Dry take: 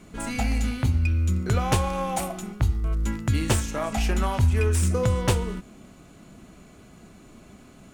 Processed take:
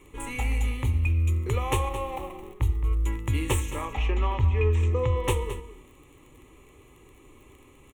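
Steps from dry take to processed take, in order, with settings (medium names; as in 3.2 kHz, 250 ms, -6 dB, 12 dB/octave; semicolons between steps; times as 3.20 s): 1.89–2.61 s: median filter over 25 samples; 3.85–5.24 s: Bessel low-pass 3.8 kHz, order 8; crackle 21 per s -37 dBFS; static phaser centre 1 kHz, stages 8; delay 218 ms -13 dB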